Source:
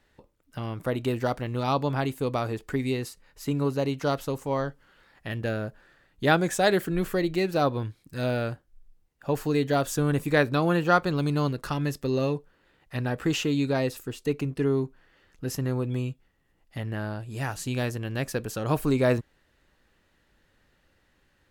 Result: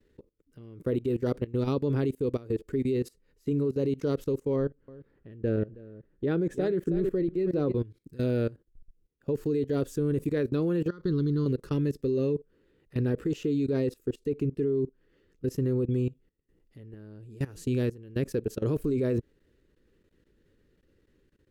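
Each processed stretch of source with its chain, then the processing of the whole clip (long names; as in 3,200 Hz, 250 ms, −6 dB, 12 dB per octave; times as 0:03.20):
0:04.56–0:07.74: high-shelf EQ 3,500 Hz −12 dB + single-tap delay 320 ms −11.5 dB + one half of a high-frequency compander decoder only
0:10.88–0:11.46: low-pass filter 11,000 Hz + phaser with its sweep stopped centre 2,500 Hz, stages 6 + downward compressor 3 to 1, threshold −26 dBFS
whole clip: low shelf with overshoot 560 Hz +9 dB, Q 3; output level in coarse steps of 20 dB; level −6 dB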